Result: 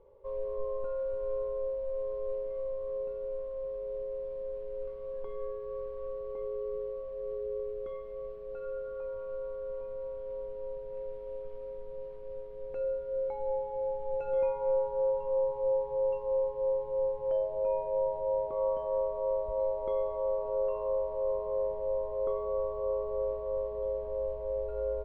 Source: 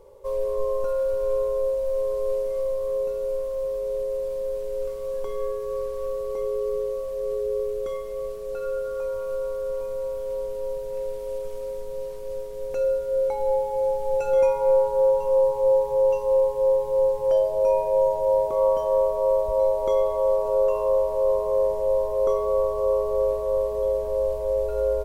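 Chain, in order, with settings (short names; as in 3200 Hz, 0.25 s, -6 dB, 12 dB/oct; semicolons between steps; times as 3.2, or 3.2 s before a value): air absorption 430 m; gain -8.5 dB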